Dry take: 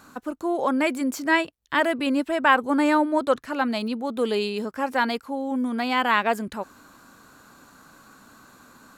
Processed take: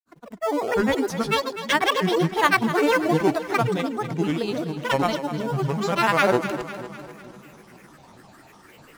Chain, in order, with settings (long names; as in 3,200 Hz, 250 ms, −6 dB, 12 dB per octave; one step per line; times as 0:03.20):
fade in at the beginning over 0.55 s
in parallel at −9 dB: sample-and-hold swept by an LFO 14×, swing 100% 0.44 Hz
on the sum: granular cloud, pitch spread up and down by 12 semitones
echo with a time of its own for lows and highs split 300 Hz, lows 460 ms, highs 250 ms, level −11.5 dB